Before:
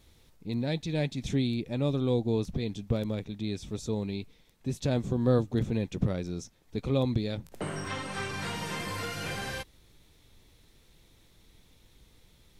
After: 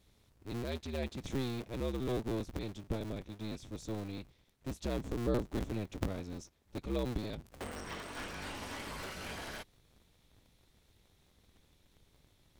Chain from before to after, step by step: cycle switcher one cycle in 2, inverted; gain -8 dB

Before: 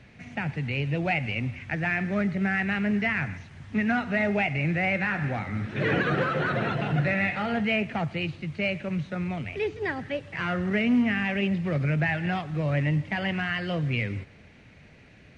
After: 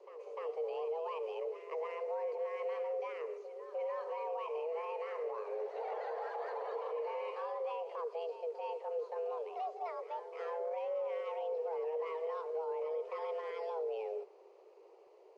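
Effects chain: band shelf 2000 Hz -12.5 dB; frequency shift +320 Hz; limiter -25 dBFS, peak gain reduction 9.5 dB; Chebyshev high-pass 280 Hz, order 2; high shelf 3000 Hz -10.5 dB; reverse echo 0.3 s -11 dB; gain -6.5 dB

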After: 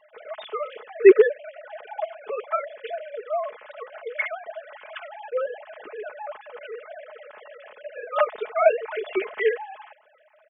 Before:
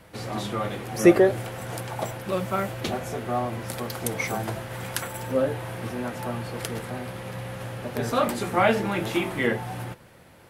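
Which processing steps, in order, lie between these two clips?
sine-wave speech; comb 4.7 ms, depth 68%; gain -1 dB

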